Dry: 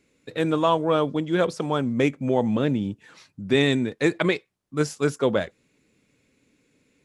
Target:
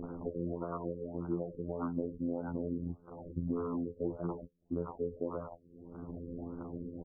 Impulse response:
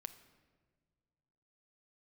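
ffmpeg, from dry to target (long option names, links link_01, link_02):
-filter_complex "[0:a]tremolo=f=70:d=0.824,acompressor=mode=upward:threshold=-26dB:ratio=2.5,afftfilt=real='hypot(re,im)*cos(PI*b)':imag='0':win_size=2048:overlap=0.75,bandreject=frequency=1900:width=8,acompressor=threshold=-41dB:ratio=5,acrossover=split=730|2600[link_01][link_02][link_03];[link_03]adelay=40[link_04];[link_02]adelay=100[link_05];[link_01][link_05][link_04]amix=inputs=3:normalize=0,acrusher=samples=19:mix=1:aa=0.000001,afftfilt=real='re*lt(b*sr/1024,530*pow(1600/530,0.5+0.5*sin(2*PI*1.7*pts/sr)))':imag='im*lt(b*sr/1024,530*pow(1600/530,0.5+0.5*sin(2*PI*1.7*pts/sr)))':win_size=1024:overlap=0.75,volume=8.5dB"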